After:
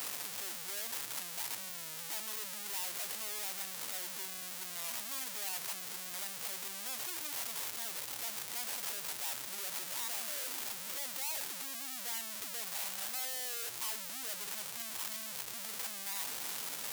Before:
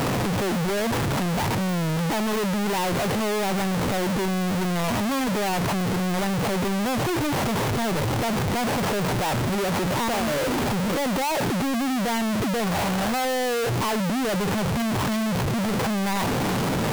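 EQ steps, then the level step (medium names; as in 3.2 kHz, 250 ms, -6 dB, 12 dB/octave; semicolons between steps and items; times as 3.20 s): differentiator; -5.0 dB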